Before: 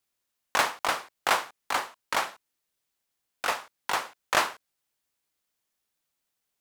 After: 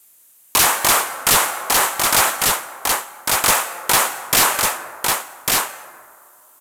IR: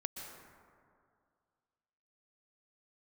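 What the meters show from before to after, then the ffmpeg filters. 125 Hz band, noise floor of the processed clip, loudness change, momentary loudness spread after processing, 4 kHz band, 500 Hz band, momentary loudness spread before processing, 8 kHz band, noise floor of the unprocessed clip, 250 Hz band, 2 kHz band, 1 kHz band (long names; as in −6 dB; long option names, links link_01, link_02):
+19.5 dB, −51 dBFS, +12.5 dB, 6 LU, +14.5 dB, +10.0 dB, 6 LU, +22.0 dB, −82 dBFS, +14.0 dB, +10.5 dB, +10.0 dB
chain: -filter_complex "[0:a]aexciter=amount=5.3:drive=3.5:freq=6900,lowshelf=frequency=120:gain=-8,acontrast=57,asplit=2[link_01][link_02];[1:a]atrim=start_sample=2205,adelay=52[link_03];[link_02][link_03]afir=irnorm=-1:irlink=0,volume=-17dB[link_04];[link_01][link_04]amix=inputs=2:normalize=0,aeval=exprs='(mod(3.76*val(0)+1,2)-1)/3.76':channel_layout=same,aresample=32000,aresample=44100,asoftclip=type=tanh:threshold=-11.5dB,aecho=1:1:1149:0.316,alimiter=level_in=19.5dB:limit=-1dB:release=50:level=0:latency=1,volume=-5.5dB"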